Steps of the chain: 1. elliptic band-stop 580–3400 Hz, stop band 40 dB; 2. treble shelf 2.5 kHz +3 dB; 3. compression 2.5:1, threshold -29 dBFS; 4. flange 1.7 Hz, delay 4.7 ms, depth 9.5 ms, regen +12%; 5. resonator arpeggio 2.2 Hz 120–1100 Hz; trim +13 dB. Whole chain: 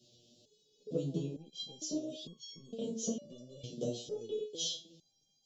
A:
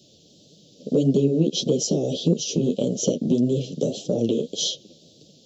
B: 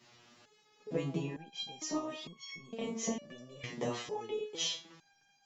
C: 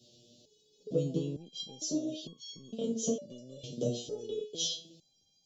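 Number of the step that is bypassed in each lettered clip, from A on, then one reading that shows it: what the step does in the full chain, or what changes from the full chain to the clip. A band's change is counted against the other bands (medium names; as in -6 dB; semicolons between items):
5, 4 kHz band -5.0 dB; 1, 1 kHz band +16.5 dB; 4, loudness change +3.5 LU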